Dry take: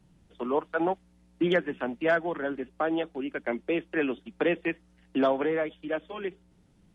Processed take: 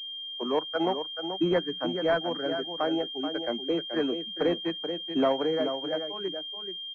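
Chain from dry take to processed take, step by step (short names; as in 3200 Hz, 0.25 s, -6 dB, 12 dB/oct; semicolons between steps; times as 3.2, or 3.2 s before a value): spectral noise reduction 20 dB; echo 0.432 s -8 dB; pulse-width modulation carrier 3200 Hz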